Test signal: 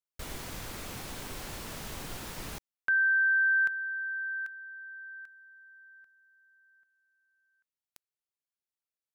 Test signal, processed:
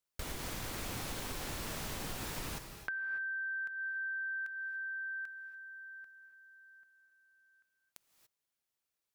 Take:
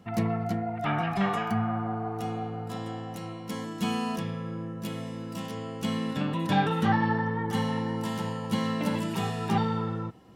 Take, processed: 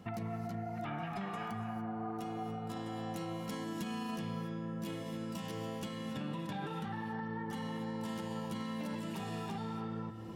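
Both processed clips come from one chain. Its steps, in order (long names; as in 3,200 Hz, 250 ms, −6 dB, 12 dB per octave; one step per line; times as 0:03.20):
speech leveller within 4 dB 0.5 s
brickwall limiter −24 dBFS
downward compressor 12 to 1, threshold −38 dBFS
reverb whose tail is shaped and stops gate 310 ms rising, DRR 7.5 dB
level +1 dB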